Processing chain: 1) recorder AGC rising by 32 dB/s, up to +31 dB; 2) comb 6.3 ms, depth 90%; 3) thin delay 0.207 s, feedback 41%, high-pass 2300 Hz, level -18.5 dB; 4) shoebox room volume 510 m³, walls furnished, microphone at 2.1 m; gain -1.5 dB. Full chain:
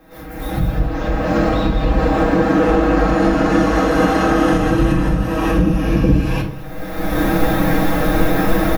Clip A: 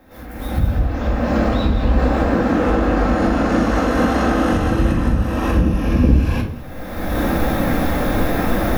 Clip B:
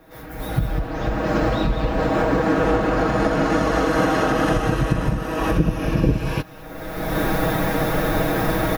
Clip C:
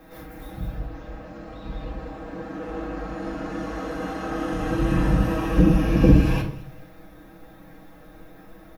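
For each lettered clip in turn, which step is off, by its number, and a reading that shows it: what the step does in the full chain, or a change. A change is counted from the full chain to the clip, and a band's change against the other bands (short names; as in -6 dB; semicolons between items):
2, 125 Hz band +2.5 dB; 4, echo-to-direct -0.5 dB to -23.5 dB; 1, crest factor change +8.0 dB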